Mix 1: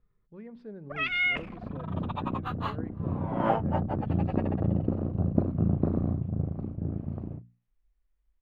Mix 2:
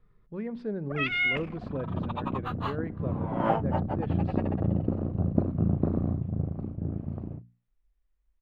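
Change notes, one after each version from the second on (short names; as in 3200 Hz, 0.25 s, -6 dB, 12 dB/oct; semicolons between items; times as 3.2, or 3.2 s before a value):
speech +10.0 dB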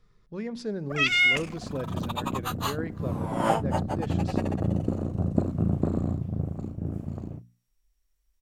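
master: remove air absorption 470 m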